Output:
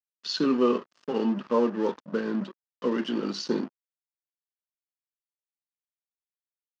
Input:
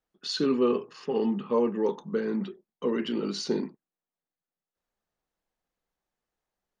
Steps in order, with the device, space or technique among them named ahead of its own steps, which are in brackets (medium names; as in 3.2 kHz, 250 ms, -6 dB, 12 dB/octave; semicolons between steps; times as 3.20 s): blown loudspeaker (crossover distortion -42 dBFS; cabinet simulation 210–5800 Hz, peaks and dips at 420 Hz -7 dB, 780 Hz -5 dB, 2.2 kHz -7 dB, 3.8 kHz -4 dB); trim +5.5 dB